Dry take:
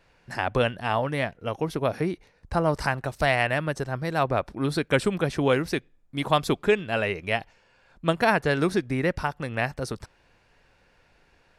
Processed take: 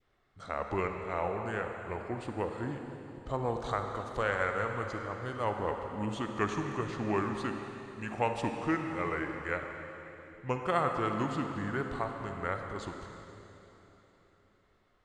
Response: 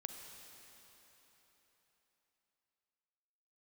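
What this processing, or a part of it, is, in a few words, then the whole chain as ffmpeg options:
slowed and reverbed: -filter_complex "[0:a]asetrate=33957,aresample=44100[link_01];[1:a]atrim=start_sample=2205[link_02];[link_01][link_02]afir=irnorm=-1:irlink=0,adynamicequalizer=threshold=0.00794:dfrequency=1100:dqfactor=0.98:tfrequency=1100:tqfactor=0.98:attack=5:release=100:ratio=0.375:range=3:mode=boostabove:tftype=bell,volume=-7.5dB"

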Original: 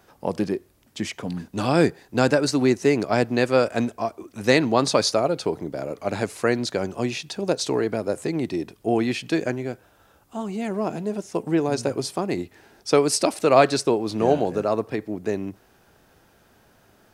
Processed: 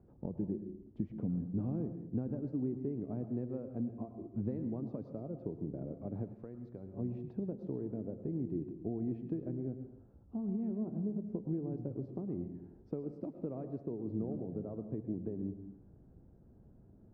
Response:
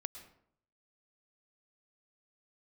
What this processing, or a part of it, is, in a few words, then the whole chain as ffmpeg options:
television next door: -filter_complex "[0:a]acompressor=threshold=-32dB:ratio=5,lowpass=250[link_01];[1:a]atrim=start_sample=2205[link_02];[link_01][link_02]afir=irnorm=-1:irlink=0,asettb=1/sr,asplit=3[link_03][link_04][link_05];[link_03]atrim=end=6.344[link_06];[link_04]atrim=start=6.34:end=6.94,asetpts=PTS-STARTPTS,afade=type=in:duration=0.004:curve=qsin,afade=type=out:start_time=0.596:duration=0.004:curve=qsin,equalizer=frequency=210:width=0.3:gain=-8.5[link_07];[link_05]atrim=start=6.936[link_08];[link_06][link_07]acrossfade=duration=0.004:curve1=hsin:curve2=qsin[link_09];[link_09][link_08]acrossfade=duration=0.004:curve1=qsin:curve2=hsin,volume=5dB"

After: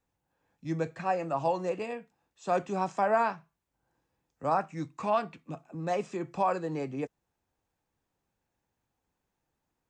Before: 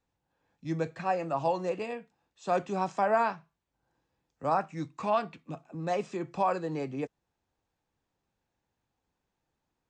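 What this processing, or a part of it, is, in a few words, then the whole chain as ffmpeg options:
exciter from parts: -filter_complex "[0:a]asplit=2[link_01][link_02];[link_02]highpass=3000,asoftclip=type=tanh:threshold=-39.5dB,highpass=3900,volume=-7dB[link_03];[link_01][link_03]amix=inputs=2:normalize=0"

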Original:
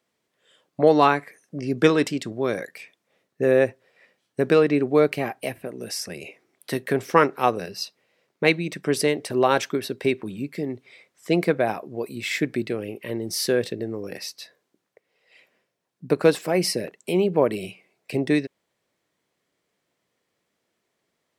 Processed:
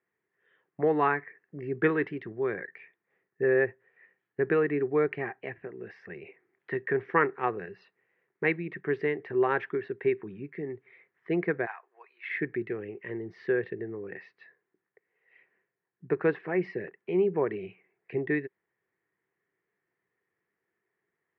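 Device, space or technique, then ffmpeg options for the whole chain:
bass cabinet: -filter_complex "[0:a]asplit=3[link_01][link_02][link_03];[link_01]afade=type=out:start_time=11.65:duration=0.02[link_04];[link_02]highpass=frequency=870:width=0.5412,highpass=frequency=870:width=1.3066,afade=type=in:start_time=11.65:duration=0.02,afade=type=out:start_time=12.28:duration=0.02[link_05];[link_03]afade=type=in:start_time=12.28:duration=0.02[link_06];[link_04][link_05][link_06]amix=inputs=3:normalize=0,highpass=62,equalizer=frequency=250:width_type=q:width=4:gain=-8,equalizer=frequency=390:width_type=q:width=4:gain=7,equalizer=frequency=590:width_type=q:width=4:gain=-10,equalizer=frequency=1800:width_type=q:width=4:gain=10,lowpass=frequency=2300:width=0.5412,lowpass=frequency=2300:width=1.3066,highshelf=frequency=7200:gain=-9.5,volume=-7.5dB"

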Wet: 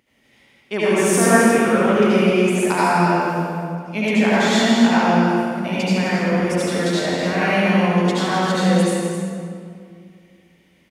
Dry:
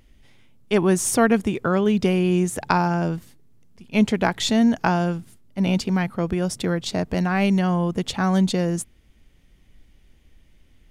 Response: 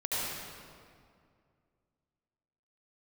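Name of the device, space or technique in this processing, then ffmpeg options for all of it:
stadium PA: -filter_complex "[0:a]highpass=190,equalizer=frequency=2100:width_type=o:width=0.56:gain=5,aecho=1:1:160.3|259.5:0.355|0.355[link_01];[1:a]atrim=start_sample=2205[link_02];[link_01][link_02]afir=irnorm=-1:irlink=0,volume=-3dB"

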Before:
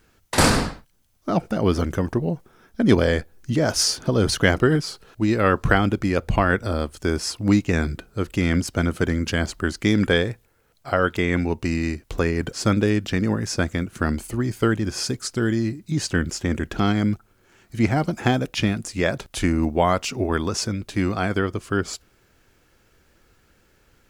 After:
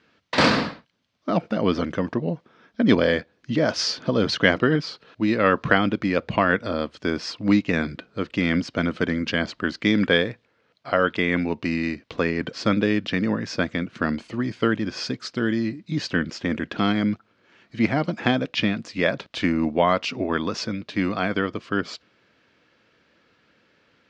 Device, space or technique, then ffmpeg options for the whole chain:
kitchen radio: -af "highpass=200,equalizer=frequency=380:width_type=q:width=4:gain=-7,equalizer=frequency=800:width_type=q:width=4:gain=-6,equalizer=frequency=1400:width_type=q:width=4:gain=-3,lowpass=frequency=4500:width=0.5412,lowpass=frequency=4500:width=1.3066,volume=2.5dB"

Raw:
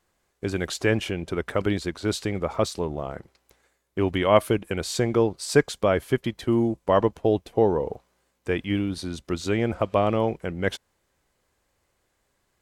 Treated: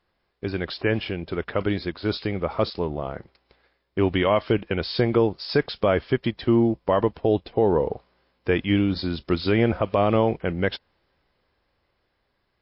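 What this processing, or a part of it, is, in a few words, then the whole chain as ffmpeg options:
low-bitrate web radio: -af "dynaudnorm=framelen=590:gausssize=9:maxgain=16dB,alimiter=limit=-9dB:level=0:latency=1:release=96" -ar 12000 -c:a libmp3lame -b:a 32k

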